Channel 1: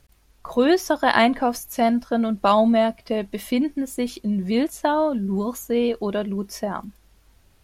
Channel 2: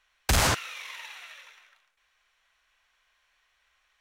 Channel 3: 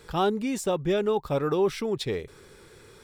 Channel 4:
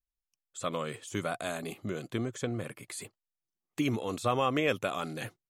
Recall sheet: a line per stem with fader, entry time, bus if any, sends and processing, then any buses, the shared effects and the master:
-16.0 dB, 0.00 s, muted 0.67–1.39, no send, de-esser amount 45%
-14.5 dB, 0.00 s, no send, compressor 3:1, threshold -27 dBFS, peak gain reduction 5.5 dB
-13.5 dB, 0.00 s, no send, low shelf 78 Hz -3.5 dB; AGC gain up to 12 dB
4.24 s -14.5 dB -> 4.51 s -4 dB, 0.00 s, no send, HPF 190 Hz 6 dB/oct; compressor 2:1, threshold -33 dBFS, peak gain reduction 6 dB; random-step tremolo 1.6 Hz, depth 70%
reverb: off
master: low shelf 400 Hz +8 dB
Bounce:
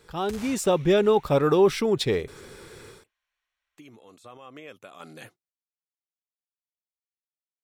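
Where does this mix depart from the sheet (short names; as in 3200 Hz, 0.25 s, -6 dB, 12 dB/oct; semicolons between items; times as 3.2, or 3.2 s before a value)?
stem 1: muted; stem 3 -13.5 dB -> -5.5 dB; master: missing low shelf 400 Hz +8 dB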